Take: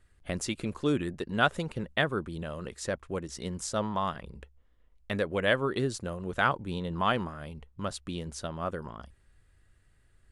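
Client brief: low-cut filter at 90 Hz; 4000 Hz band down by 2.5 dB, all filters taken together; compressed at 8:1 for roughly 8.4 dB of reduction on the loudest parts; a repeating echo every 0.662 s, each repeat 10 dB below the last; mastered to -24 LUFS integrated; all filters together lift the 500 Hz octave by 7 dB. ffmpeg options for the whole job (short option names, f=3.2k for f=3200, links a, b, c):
-af "highpass=90,equalizer=f=500:t=o:g=8.5,equalizer=f=4k:t=o:g=-3.5,acompressor=threshold=-25dB:ratio=8,aecho=1:1:662|1324|1986|2648:0.316|0.101|0.0324|0.0104,volume=9dB"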